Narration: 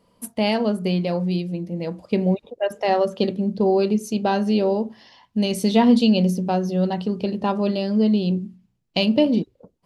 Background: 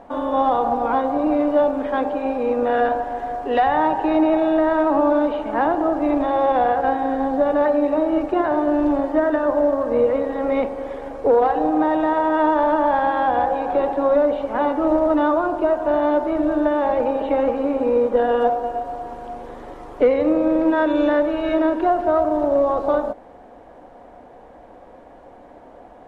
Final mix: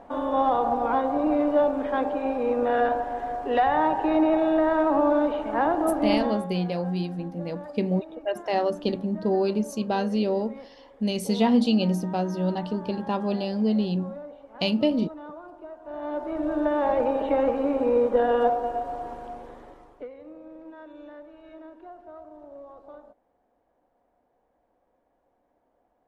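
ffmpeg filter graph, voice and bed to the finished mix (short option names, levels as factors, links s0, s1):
-filter_complex "[0:a]adelay=5650,volume=0.562[s0];[1:a]volume=5.96,afade=t=out:st=6.13:d=0.34:silence=0.112202,afade=t=in:st=15.83:d=1.07:silence=0.105925,afade=t=out:st=19.06:d=1.02:silence=0.0707946[s1];[s0][s1]amix=inputs=2:normalize=0"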